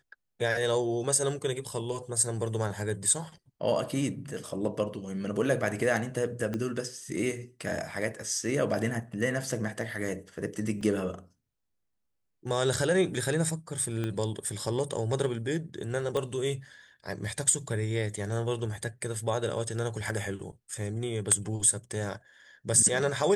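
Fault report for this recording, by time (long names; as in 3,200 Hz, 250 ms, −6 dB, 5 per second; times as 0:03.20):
0:06.54: click −20 dBFS
0:10.81: drop-out 4.5 ms
0:14.04: click −20 dBFS
0:16.17: click −18 dBFS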